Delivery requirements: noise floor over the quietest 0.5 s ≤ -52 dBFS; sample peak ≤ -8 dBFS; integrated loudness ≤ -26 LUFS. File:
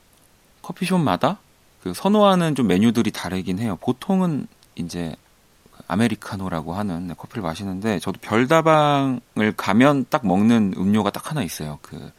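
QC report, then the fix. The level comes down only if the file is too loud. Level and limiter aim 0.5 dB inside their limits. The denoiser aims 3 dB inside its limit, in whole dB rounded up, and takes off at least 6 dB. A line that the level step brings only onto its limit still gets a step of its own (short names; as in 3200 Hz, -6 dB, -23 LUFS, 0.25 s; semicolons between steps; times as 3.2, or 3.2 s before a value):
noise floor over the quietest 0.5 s -56 dBFS: OK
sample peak -2.0 dBFS: fail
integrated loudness -20.5 LUFS: fail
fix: gain -6 dB; limiter -8.5 dBFS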